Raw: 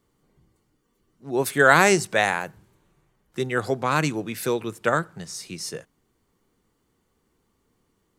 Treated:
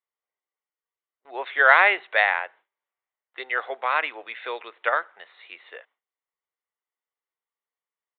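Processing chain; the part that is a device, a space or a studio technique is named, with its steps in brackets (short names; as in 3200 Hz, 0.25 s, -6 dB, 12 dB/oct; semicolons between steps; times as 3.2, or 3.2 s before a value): musical greeting card (downsampling 8000 Hz; HPF 590 Hz 24 dB/oct; bell 2000 Hz +7 dB 0.3 oct); gate with hold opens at -50 dBFS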